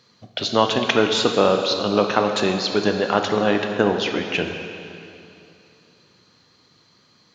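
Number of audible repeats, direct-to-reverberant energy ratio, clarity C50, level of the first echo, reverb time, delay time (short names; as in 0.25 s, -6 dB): none, 4.0 dB, 5.5 dB, none, 2.8 s, none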